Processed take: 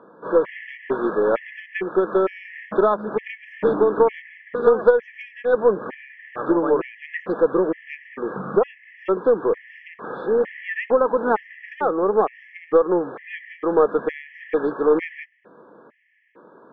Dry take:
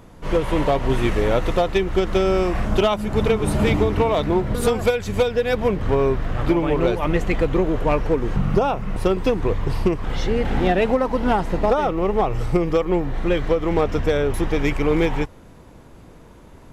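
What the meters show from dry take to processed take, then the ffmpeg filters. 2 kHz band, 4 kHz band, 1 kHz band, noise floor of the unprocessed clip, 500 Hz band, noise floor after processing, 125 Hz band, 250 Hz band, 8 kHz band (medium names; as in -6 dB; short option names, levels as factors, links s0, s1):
-1.5 dB, under -15 dB, -1.5 dB, -45 dBFS, +1.0 dB, -50 dBFS, -18.0 dB, -4.5 dB, under -40 dB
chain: -af "highpass=f=230:w=0.5412,highpass=f=230:w=1.3066,equalizer=f=260:t=q:w=4:g=-6,equalizer=f=470:t=q:w=4:g=5,equalizer=f=730:t=q:w=4:g=-4,equalizer=f=1200:t=q:w=4:g=4,equalizer=f=1800:t=q:w=4:g=4,lowpass=f=2100:w=0.5412,lowpass=f=2100:w=1.3066,aeval=exprs='0.708*(cos(1*acos(clip(val(0)/0.708,-1,1)))-cos(1*PI/2))+0.0316*(cos(2*acos(clip(val(0)/0.708,-1,1)))-cos(2*PI/2))+0.0251*(cos(3*acos(clip(val(0)/0.708,-1,1)))-cos(3*PI/2))+0.00708*(cos(5*acos(clip(val(0)/0.708,-1,1)))-cos(5*PI/2))+0.01*(cos(6*acos(clip(val(0)/0.708,-1,1)))-cos(6*PI/2))':c=same,afftfilt=real='re*gt(sin(2*PI*1.1*pts/sr)*(1-2*mod(floor(b*sr/1024/1700),2)),0)':imag='im*gt(sin(2*PI*1.1*pts/sr)*(1-2*mod(floor(b*sr/1024/1700),2)),0)':win_size=1024:overlap=0.75,volume=1.19"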